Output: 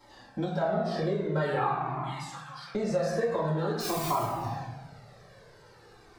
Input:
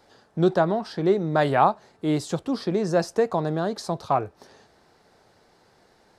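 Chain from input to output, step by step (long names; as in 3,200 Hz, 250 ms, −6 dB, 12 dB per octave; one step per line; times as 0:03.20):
0:01.69–0:02.75: four-pole ladder high-pass 1,100 Hz, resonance 65%
0:03.80–0:04.23: bit-depth reduction 6 bits, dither triangular
convolution reverb RT60 1.1 s, pre-delay 4 ms, DRR −8.5 dB
downward compressor 6 to 1, threshold −21 dBFS, peak gain reduction 14 dB
flanger whose copies keep moving one way falling 0.47 Hz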